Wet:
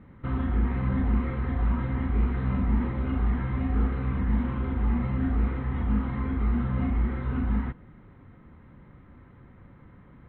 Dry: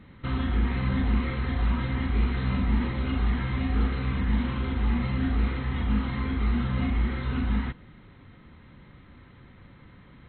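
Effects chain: low-pass 1.5 kHz 12 dB/octave

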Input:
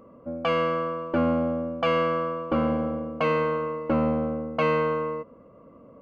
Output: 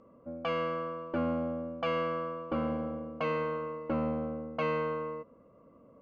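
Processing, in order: low-pass 7.3 kHz 24 dB/octave; trim -8 dB

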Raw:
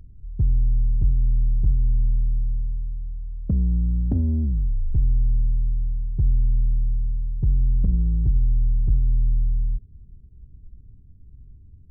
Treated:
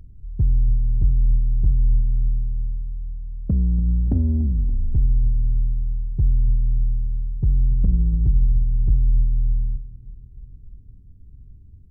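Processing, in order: feedback delay 287 ms, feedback 57%, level -16 dB; trim +1.5 dB

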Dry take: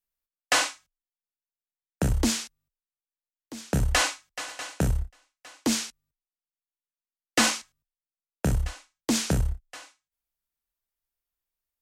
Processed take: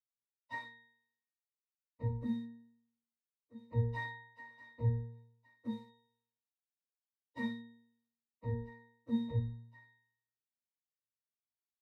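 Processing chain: frequency axis rescaled in octaves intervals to 125%; pitch-class resonator A#, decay 0.69 s; trim +10 dB

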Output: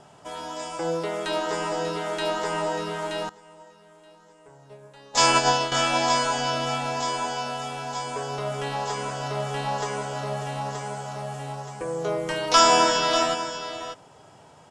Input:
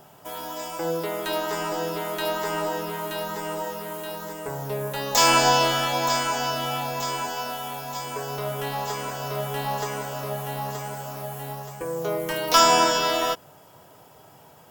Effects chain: steep low-pass 9.1 kHz 36 dB/octave; delay 592 ms -10.5 dB; 3.29–5.72 s: upward expansion 2.5:1, over -29 dBFS

